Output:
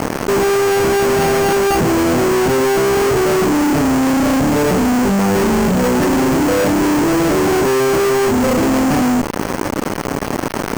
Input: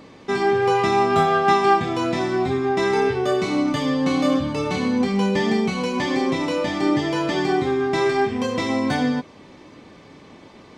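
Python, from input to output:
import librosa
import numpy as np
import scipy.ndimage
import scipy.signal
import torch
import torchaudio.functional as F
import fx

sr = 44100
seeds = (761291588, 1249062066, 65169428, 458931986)

y = scipy.signal.medfilt(x, 41)
y = scipy.signal.sosfilt(scipy.signal.butter(4, 76.0, 'highpass', fs=sr, output='sos'), y)
y = fx.low_shelf(y, sr, hz=120.0, db=-9.0)
y = fx.fuzz(y, sr, gain_db=44.0, gate_db=-47.0)
y = np.repeat(scipy.signal.resample_poly(y, 1, 6), 6)[:len(y)]
y = fx.env_flatten(y, sr, amount_pct=50)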